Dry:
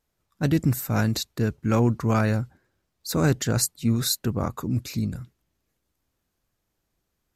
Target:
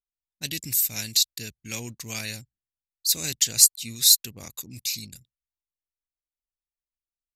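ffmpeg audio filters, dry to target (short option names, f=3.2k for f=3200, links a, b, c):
-af "aexciter=amount=15.4:drive=6.8:freq=2.1k,anlmdn=39.8,volume=-17.5dB"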